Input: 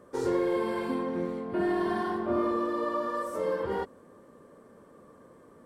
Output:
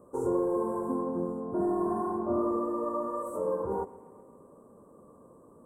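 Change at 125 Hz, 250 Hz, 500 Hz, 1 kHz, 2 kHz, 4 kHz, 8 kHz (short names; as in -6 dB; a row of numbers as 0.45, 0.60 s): 0.0 dB, -0.5 dB, -0.5 dB, -1.5 dB, under -15 dB, under -30 dB, n/a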